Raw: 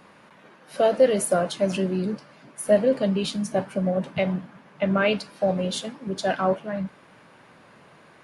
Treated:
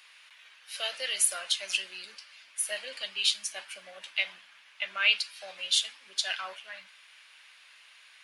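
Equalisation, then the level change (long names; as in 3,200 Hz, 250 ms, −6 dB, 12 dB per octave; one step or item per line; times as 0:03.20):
high-pass with resonance 2,800 Hz, resonance Q 1.5
+3.5 dB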